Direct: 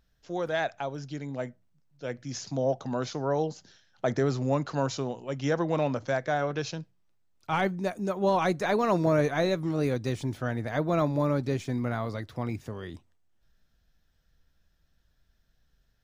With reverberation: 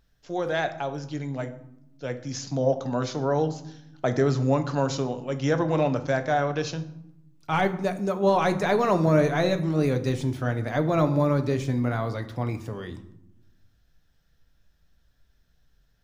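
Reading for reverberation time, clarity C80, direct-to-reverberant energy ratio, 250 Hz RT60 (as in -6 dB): 0.85 s, 16.5 dB, 8.5 dB, 1.4 s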